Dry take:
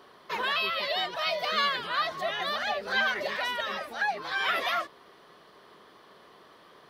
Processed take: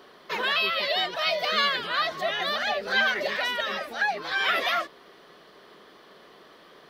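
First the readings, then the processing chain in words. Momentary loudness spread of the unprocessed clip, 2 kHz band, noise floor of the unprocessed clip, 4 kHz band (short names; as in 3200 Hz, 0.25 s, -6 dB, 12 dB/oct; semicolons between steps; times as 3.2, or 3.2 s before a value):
5 LU, +3.5 dB, -56 dBFS, +4.0 dB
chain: fifteen-band EQ 100 Hz -10 dB, 1000 Hz -5 dB, 10000 Hz -4 dB; gain +4.5 dB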